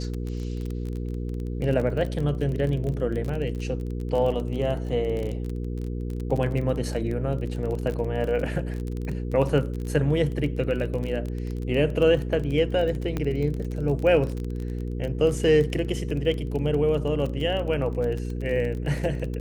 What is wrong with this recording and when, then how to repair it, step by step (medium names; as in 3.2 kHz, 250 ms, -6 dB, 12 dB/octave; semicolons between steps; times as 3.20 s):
crackle 25 per s -29 dBFS
hum 60 Hz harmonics 8 -30 dBFS
13.17 s: pop -15 dBFS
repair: de-click; de-hum 60 Hz, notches 8